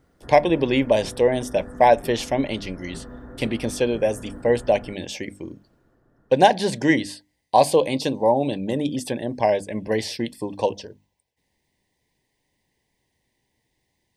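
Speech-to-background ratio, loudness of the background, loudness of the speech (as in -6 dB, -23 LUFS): 18.0 dB, -40.0 LUFS, -22.0 LUFS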